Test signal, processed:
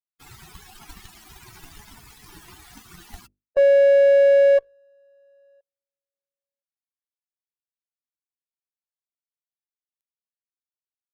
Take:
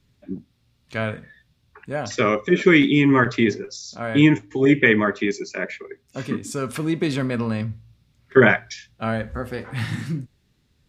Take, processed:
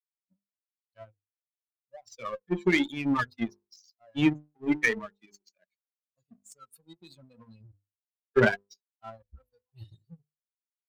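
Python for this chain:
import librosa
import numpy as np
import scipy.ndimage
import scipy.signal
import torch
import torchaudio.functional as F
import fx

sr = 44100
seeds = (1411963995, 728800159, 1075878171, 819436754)

y = fx.bin_expand(x, sr, power=3.0)
y = fx.cheby_harmonics(y, sr, harmonics=(8,), levels_db=(-34,), full_scale_db=-5.5)
y = fx.hum_notches(y, sr, base_hz=50, count=10)
y = fx.power_curve(y, sr, exponent=1.4)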